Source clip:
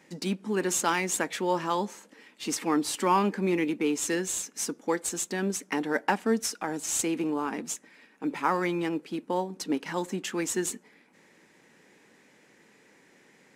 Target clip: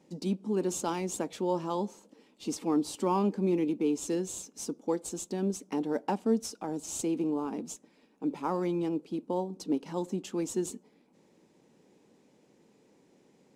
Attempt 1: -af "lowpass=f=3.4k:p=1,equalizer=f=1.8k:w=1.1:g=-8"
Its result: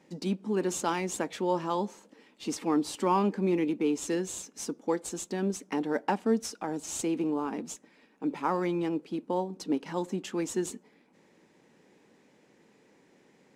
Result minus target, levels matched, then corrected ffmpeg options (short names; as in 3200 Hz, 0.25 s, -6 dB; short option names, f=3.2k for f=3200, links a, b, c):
2000 Hz band +7.0 dB
-af "lowpass=f=3.4k:p=1,equalizer=f=1.8k:w=1.1:g=-18"